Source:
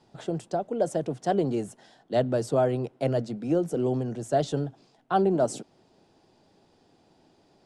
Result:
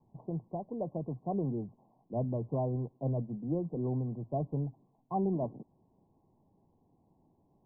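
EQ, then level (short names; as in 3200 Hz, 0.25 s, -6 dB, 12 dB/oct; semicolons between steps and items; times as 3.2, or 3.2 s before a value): Chebyshev low-pass 1100 Hz, order 10; air absorption 460 m; bell 520 Hz -10.5 dB 2 oct; 0.0 dB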